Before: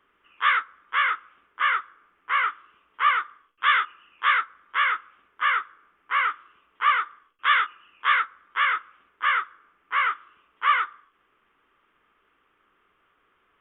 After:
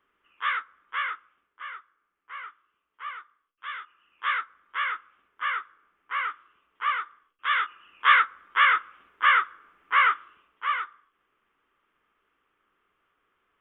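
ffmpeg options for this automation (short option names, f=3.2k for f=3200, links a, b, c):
-af "volume=13dB,afade=t=out:st=0.96:d=0.68:silence=0.316228,afade=t=in:st=3.81:d=0.48:silence=0.298538,afade=t=in:st=7.48:d=0.62:silence=0.354813,afade=t=out:st=10.12:d=0.52:silence=0.334965"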